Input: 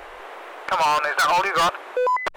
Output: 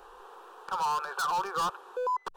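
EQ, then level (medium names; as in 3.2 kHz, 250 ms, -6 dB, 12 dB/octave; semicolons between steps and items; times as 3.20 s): static phaser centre 420 Hz, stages 8; -8.5 dB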